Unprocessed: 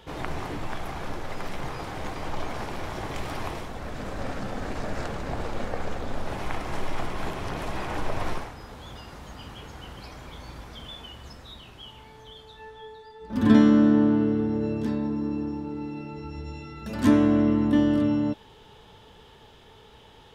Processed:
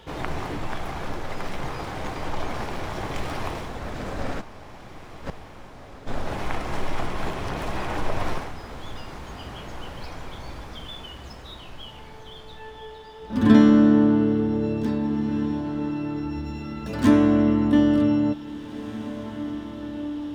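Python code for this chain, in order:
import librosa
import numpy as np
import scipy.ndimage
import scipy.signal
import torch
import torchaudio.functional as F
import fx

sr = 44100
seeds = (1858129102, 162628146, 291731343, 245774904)

y = scipy.ndimage.median_filter(x, 3, mode='constant')
y = fx.gate_flip(y, sr, shuts_db=-23.0, range_db=-31, at=(4.4, 6.06), fade=0.02)
y = fx.echo_diffused(y, sr, ms=1958, feedback_pct=48, wet_db=-13.0)
y = F.gain(torch.from_numpy(y), 2.5).numpy()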